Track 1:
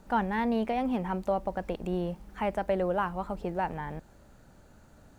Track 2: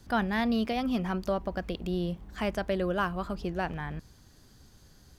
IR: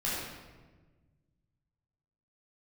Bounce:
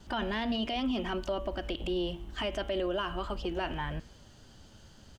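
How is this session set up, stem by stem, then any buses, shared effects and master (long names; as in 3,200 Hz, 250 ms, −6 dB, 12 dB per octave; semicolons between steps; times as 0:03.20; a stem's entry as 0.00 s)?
−0.5 dB, 0.00 s, no send, flanger swept by the level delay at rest 11.2 ms, full sweep at −26.5 dBFS
0.0 dB, 2.7 ms, no send, Butterworth low-pass 8,700 Hz; hum removal 115.2 Hz, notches 35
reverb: not used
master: parametric band 3,000 Hz +13 dB 0.25 octaves; brickwall limiter −24 dBFS, peak gain reduction 9 dB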